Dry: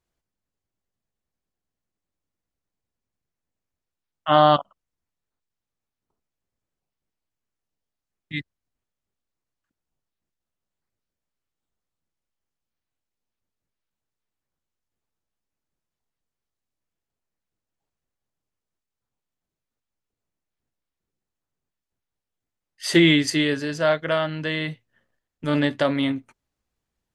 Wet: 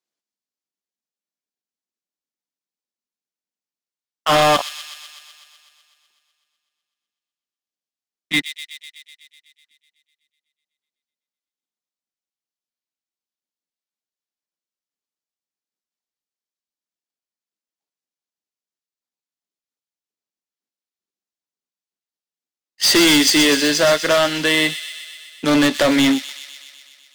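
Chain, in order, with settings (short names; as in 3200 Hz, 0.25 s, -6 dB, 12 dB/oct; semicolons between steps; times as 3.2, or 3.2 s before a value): steep high-pass 190 Hz 36 dB/oct; bell 5000 Hz +9 dB 1.9 oct; in parallel at -2 dB: compressor, threshold -27 dBFS, peak gain reduction 16 dB; on the sum: overloaded stage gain 19.5 dB; power-law curve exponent 1.4; on a send: thin delay 0.125 s, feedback 71%, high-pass 3200 Hz, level -7 dB; on the sum: gain +8 dB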